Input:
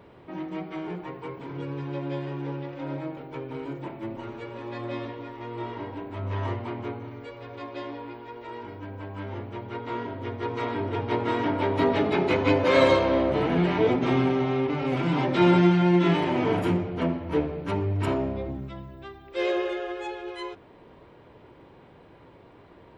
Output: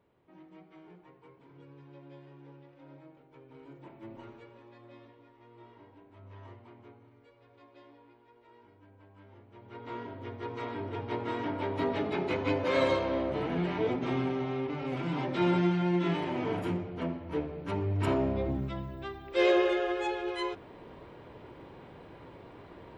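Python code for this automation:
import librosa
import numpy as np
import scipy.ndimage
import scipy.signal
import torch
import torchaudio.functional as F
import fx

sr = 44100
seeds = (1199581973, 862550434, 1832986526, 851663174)

y = fx.gain(x, sr, db=fx.line((3.35, -19.5), (4.21, -10.0), (4.78, -20.0), (9.46, -20.0), (9.87, -8.0), (17.46, -8.0), (18.56, 2.0)))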